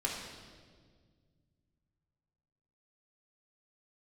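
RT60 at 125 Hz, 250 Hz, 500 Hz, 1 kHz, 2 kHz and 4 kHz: 3.5, 2.7, 2.0, 1.5, 1.4, 1.5 seconds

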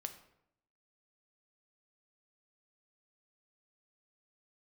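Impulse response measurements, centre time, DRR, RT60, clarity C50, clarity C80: 11 ms, 7.0 dB, 0.75 s, 11.5 dB, 14.0 dB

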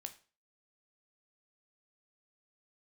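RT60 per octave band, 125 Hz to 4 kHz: 0.40, 0.40, 0.40, 0.35, 0.35, 0.35 seconds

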